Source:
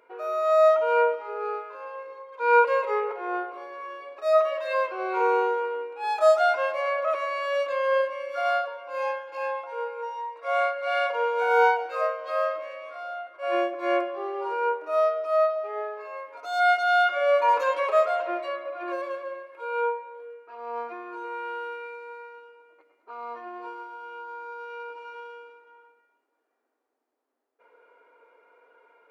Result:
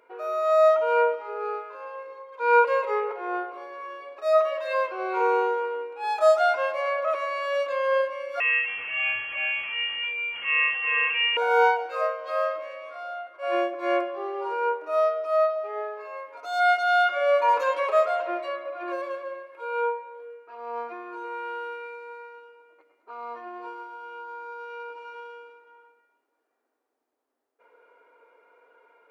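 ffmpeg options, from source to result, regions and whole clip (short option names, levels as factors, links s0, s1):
-filter_complex "[0:a]asettb=1/sr,asplit=3[s0][s1][s2];[s0]atrim=end=8.404[s3];[s1]atrim=start=8.4:end=11.37,asetpts=PTS-STARTPTS,afade=t=in:d=0.004:c=qsin,afade=t=out:st=2.966:d=0.004:c=qsin,aeval=exprs='val(0)+0.5*0.0237*sgn(val(0))':c=same,lowpass=f=2800:t=q:w=0.5098,lowpass=f=2800:t=q:w=0.6013,lowpass=f=2800:t=q:w=0.9,lowpass=f=2800:t=q:w=2.563,afreqshift=-3300[s4];[s2]atrim=start=11.366[s5];[s3][s4]acrossfade=d=0.004:c1=hsin:c2=qsin[s6];[s6][s5]acrossfade=d=0.004:c1=qsin:c2=hsin"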